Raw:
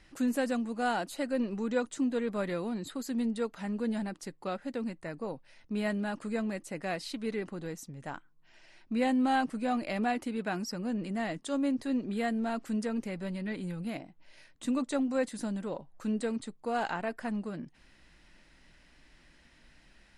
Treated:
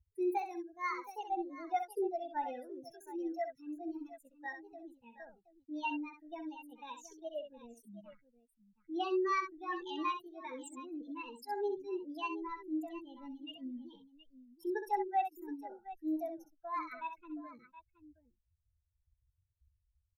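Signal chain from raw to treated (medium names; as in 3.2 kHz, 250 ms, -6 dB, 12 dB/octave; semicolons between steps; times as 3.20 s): expander on every frequency bin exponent 3; treble shelf 3 kHz -7.5 dB; small resonant body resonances 570/1300/1900 Hz, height 7 dB, ringing for 25 ms; pitch shift +6.5 st; on a send: multi-tap echo 64/721 ms -8.5/-15 dB; on the sum: trim -2 dB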